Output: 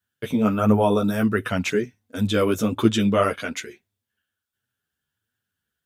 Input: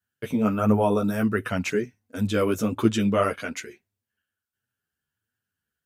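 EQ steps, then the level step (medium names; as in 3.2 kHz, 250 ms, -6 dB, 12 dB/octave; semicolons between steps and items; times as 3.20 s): peaking EQ 3.5 kHz +7 dB 0.24 oct; +2.5 dB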